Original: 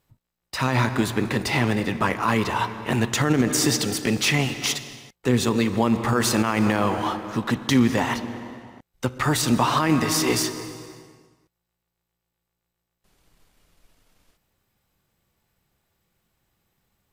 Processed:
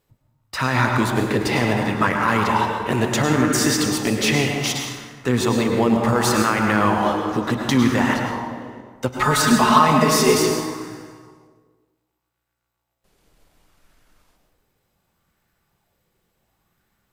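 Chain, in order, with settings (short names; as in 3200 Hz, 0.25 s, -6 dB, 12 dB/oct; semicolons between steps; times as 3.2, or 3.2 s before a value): 9.15–10.38 comb 4.7 ms, depth 86%; plate-style reverb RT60 1.4 s, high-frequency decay 0.45×, pre-delay 90 ms, DRR 2.5 dB; LFO bell 0.68 Hz 430–1600 Hz +6 dB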